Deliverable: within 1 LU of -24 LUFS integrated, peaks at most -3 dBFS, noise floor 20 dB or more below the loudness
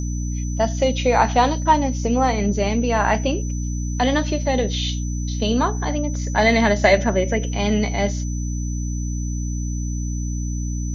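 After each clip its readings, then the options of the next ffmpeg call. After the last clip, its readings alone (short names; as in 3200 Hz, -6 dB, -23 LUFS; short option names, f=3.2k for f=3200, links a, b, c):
hum 60 Hz; harmonics up to 300 Hz; hum level -22 dBFS; steady tone 6000 Hz; tone level -36 dBFS; loudness -21.0 LUFS; peak -2.0 dBFS; loudness target -24.0 LUFS
-> -af "bandreject=f=60:t=h:w=4,bandreject=f=120:t=h:w=4,bandreject=f=180:t=h:w=4,bandreject=f=240:t=h:w=4,bandreject=f=300:t=h:w=4"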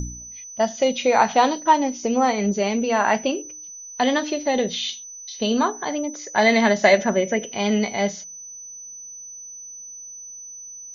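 hum none; steady tone 6000 Hz; tone level -36 dBFS
-> -af "bandreject=f=6k:w=30"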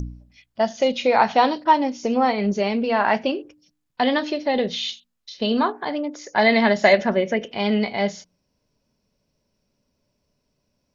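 steady tone none; loudness -21.0 LUFS; peak -2.0 dBFS; loudness target -24.0 LUFS
-> -af "volume=-3dB"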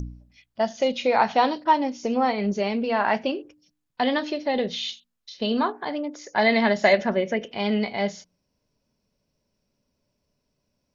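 loudness -24.0 LUFS; peak -5.0 dBFS; noise floor -77 dBFS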